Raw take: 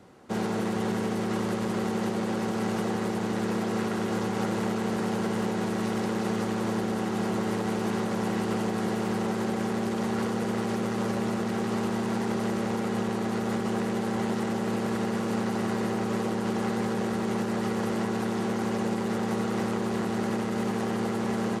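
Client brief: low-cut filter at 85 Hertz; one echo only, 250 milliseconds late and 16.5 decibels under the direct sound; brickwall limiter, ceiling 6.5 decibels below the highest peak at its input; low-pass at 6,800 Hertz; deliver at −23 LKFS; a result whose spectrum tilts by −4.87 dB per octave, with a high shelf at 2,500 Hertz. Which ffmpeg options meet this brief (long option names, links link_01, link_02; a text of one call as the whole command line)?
ffmpeg -i in.wav -af "highpass=85,lowpass=6800,highshelf=frequency=2500:gain=8.5,alimiter=limit=-22dB:level=0:latency=1,aecho=1:1:250:0.15,volume=8dB" out.wav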